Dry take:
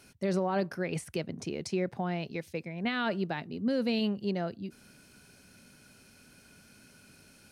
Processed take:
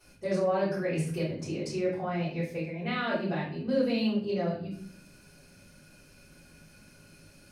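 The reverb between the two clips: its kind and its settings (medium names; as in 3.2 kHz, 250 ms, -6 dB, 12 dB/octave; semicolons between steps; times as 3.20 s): simulated room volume 61 m³, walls mixed, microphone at 3.5 m; trim -13 dB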